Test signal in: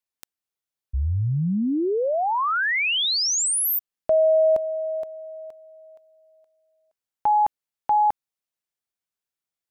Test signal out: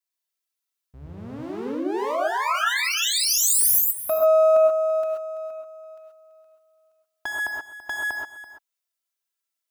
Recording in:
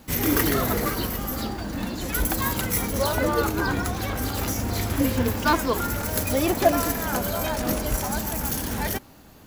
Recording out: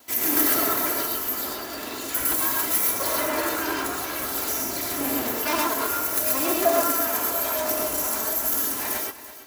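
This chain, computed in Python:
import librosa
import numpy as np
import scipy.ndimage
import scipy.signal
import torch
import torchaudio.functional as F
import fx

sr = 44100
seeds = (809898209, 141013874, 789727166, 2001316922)

y = fx.lower_of_two(x, sr, delay_ms=3.0)
y = fx.highpass(y, sr, hz=330.0, slope=6)
y = fx.tilt_eq(y, sr, slope=1.5)
y = fx.rev_gated(y, sr, seeds[0], gate_ms=150, shape='rising', drr_db=-1.5)
y = fx.dynamic_eq(y, sr, hz=3500.0, q=0.74, threshold_db=-35.0, ratio=4.0, max_db=-5)
y = y + 10.0 ** (-14.5 / 20.0) * np.pad(y, (int(334 * sr / 1000.0), 0))[:len(y)]
y = y * librosa.db_to_amplitude(-1.5)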